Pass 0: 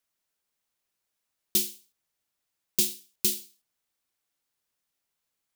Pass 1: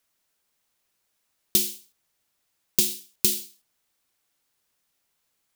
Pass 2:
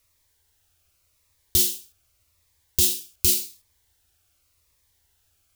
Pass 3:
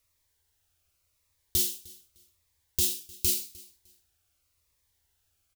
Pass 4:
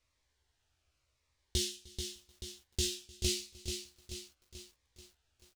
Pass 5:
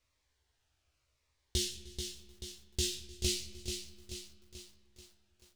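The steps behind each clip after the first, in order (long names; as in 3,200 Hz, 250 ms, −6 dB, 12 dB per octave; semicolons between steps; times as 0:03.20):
downward compressor, threshold −24 dBFS, peak gain reduction 6 dB; level +7.5 dB
low shelf with overshoot 120 Hz +12.5 dB, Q 3; brickwall limiter −12.5 dBFS, peak gain reduction 10 dB; phaser whose notches keep moving one way falling 0.87 Hz; level +7 dB
repeating echo 304 ms, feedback 24%, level −23 dB; level −6.5 dB
high-frequency loss of the air 95 metres; double-tracking delay 16 ms −3.5 dB; feedback echo at a low word length 435 ms, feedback 55%, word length 10 bits, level −7 dB
comb and all-pass reverb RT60 1.7 s, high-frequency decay 0.5×, pre-delay 5 ms, DRR 12 dB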